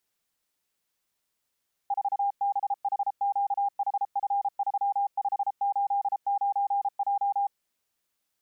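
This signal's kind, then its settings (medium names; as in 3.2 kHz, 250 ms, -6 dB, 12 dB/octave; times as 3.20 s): Morse "4BHQHF3589J" 33 wpm 803 Hz -23 dBFS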